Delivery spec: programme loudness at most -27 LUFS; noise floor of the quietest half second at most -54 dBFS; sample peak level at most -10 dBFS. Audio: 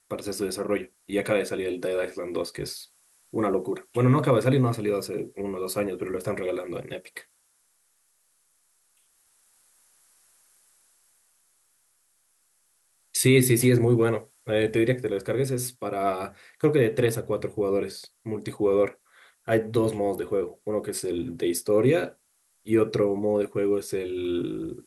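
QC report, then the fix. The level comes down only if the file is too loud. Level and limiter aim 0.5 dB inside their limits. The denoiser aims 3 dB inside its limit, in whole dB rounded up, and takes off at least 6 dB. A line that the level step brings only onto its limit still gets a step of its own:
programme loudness -26.0 LUFS: fail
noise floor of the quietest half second -68 dBFS: OK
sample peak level -6.0 dBFS: fail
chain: gain -1.5 dB; limiter -10.5 dBFS

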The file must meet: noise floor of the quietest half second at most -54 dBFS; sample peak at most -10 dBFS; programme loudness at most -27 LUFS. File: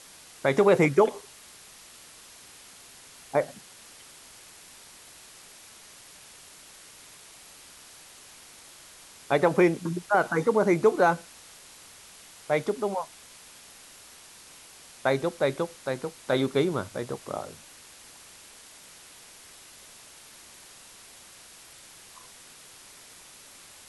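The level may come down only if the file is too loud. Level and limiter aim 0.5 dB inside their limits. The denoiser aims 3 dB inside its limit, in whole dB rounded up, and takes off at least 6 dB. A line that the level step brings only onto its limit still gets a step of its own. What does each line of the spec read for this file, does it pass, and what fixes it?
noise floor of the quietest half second -50 dBFS: fail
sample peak -8.5 dBFS: fail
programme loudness -26.0 LUFS: fail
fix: denoiser 6 dB, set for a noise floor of -50 dBFS; gain -1.5 dB; limiter -10.5 dBFS

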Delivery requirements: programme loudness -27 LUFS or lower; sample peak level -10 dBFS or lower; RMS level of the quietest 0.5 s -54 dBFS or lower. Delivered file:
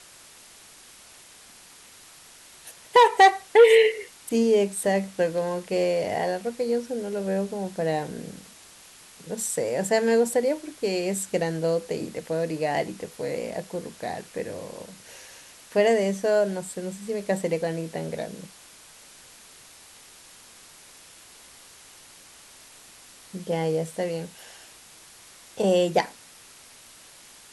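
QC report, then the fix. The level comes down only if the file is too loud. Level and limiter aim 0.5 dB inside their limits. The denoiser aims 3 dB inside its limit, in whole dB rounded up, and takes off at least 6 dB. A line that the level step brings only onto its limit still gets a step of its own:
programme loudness -24.5 LUFS: fail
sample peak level -5.0 dBFS: fail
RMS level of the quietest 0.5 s -50 dBFS: fail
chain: denoiser 6 dB, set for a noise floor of -50 dBFS; gain -3 dB; limiter -10.5 dBFS

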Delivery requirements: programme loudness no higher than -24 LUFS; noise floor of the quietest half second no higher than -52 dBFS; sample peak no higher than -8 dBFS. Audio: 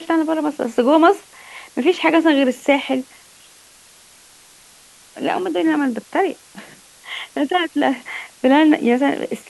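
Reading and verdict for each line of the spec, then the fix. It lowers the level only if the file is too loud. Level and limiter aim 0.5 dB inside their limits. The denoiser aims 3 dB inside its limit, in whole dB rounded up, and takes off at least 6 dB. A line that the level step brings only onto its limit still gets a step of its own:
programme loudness -18.0 LUFS: fail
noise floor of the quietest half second -48 dBFS: fail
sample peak -2.0 dBFS: fail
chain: gain -6.5 dB

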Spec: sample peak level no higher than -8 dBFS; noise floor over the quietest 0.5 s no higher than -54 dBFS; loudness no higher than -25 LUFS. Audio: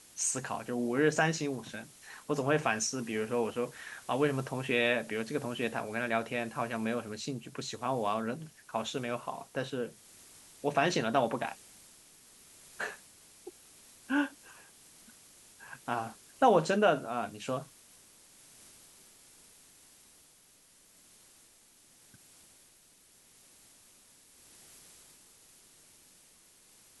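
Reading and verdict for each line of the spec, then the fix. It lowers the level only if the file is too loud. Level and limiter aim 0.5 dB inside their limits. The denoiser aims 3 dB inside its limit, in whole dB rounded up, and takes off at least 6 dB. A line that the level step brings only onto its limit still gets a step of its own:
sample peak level -12.0 dBFS: OK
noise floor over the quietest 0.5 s -62 dBFS: OK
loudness -32.5 LUFS: OK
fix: none

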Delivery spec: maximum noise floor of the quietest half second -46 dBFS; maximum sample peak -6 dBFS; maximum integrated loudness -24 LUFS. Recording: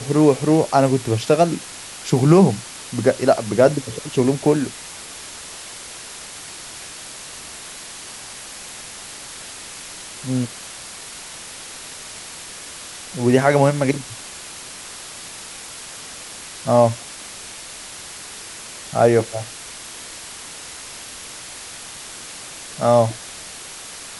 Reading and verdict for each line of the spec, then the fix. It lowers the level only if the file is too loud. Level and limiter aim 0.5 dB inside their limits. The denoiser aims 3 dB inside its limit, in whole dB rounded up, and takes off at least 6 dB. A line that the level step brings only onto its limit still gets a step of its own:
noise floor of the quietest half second -36 dBFS: fail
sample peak -2.0 dBFS: fail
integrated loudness -18.5 LUFS: fail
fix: denoiser 7 dB, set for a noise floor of -36 dBFS; gain -6 dB

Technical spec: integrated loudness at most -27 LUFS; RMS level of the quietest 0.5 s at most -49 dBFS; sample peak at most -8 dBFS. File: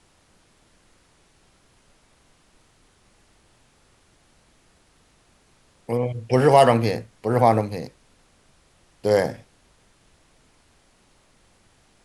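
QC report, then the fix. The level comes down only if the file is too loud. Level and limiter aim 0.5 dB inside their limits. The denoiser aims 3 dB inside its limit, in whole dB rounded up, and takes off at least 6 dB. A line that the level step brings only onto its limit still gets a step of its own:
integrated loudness -20.5 LUFS: fail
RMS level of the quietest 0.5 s -60 dBFS: OK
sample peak -2.5 dBFS: fail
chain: gain -7 dB

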